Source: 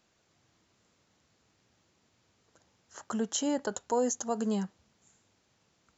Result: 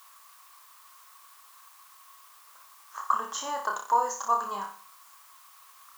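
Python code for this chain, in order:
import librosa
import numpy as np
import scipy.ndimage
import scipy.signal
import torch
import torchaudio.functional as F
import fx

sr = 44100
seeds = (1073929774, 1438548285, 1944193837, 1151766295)

p1 = fx.tilt_eq(x, sr, slope=-3.0)
p2 = fx.room_flutter(p1, sr, wall_m=5.1, rt60_s=0.44)
p3 = fx.quant_dither(p2, sr, seeds[0], bits=8, dither='triangular')
p4 = p2 + (p3 * librosa.db_to_amplitude(-9.5))
p5 = fx.highpass_res(p4, sr, hz=1100.0, q=12.0)
p6 = fx.high_shelf(p5, sr, hz=5600.0, db=4.5)
y = p6 * librosa.db_to_amplitude(-2.0)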